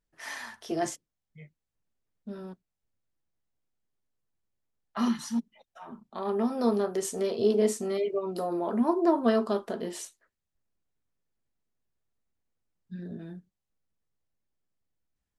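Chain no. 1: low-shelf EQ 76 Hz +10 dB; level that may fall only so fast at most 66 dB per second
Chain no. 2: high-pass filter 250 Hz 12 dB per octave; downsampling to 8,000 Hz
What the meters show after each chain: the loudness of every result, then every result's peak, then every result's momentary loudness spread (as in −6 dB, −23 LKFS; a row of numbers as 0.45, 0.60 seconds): −27.5, −30.5 LKFS; −11.0, −12.5 dBFS; 19, 21 LU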